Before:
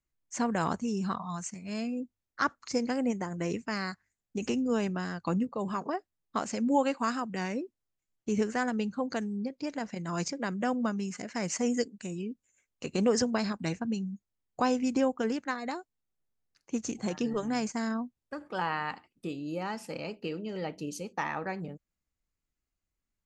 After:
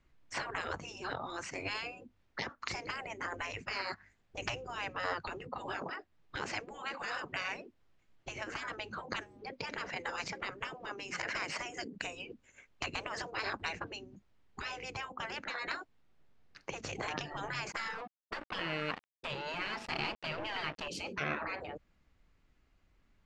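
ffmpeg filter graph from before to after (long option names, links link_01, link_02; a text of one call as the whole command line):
ffmpeg -i in.wav -filter_complex "[0:a]asettb=1/sr,asplit=3[link_01][link_02][link_03];[link_01]atrim=end=17.724[link_04];[link_02]atrim=start=17.72:end=20.88,asetpts=PTS-STARTPTS,afade=type=in:duration=0.004:curve=qsin,afade=type=out:start_time=3.156:duration=0.004:curve=qsin,highpass=frequency=320:poles=1,aeval=exprs='sgn(val(0))*max(abs(val(0))-0.00316,0)':channel_layout=same[link_05];[link_03]atrim=start=20.876[link_06];[link_04][link_05]acrossfade=duration=0.004:curve1=hsin:curve2=qsin[link_07];[link_07][link_06]acrossfade=duration=0.004:curve1=qsin:curve2=hsin,acompressor=threshold=-40dB:ratio=5,afftfilt=real='re*lt(hypot(re,im),0.0126)':imag='im*lt(hypot(re,im),0.0126)':win_size=1024:overlap=0.75,lowpass=3100,volume=18dB" out.wav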